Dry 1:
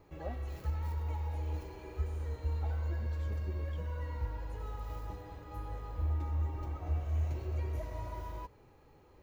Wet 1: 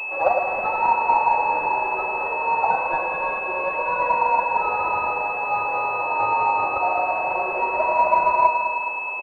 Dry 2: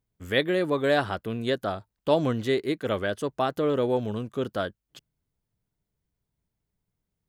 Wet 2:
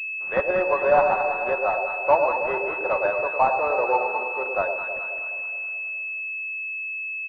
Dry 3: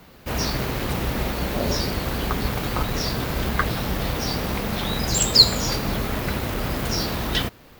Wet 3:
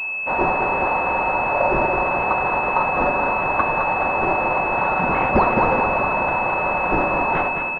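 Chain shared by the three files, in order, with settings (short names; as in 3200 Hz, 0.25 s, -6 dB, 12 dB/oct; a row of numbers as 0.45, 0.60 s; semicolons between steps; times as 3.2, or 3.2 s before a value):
HPF 590 Hz 24 dB/oct; bell 920 Hz +8 dB 0.44 oct; comb 5.4 ms, depth 37%; soft clip -13.5 dBFS; on a send: echo with dull and thin repeats by turns 0.106 s, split 810 Hz, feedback 72%, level -4 dB; on the sum: Schroeder reverb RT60 2.9 s, combs from 25 ms, DRR 12.5 dB; pulse-width modulation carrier 2600 Hz; normalise peaks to -6 dBFS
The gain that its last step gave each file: +24.5, +6.5, +8.5 dB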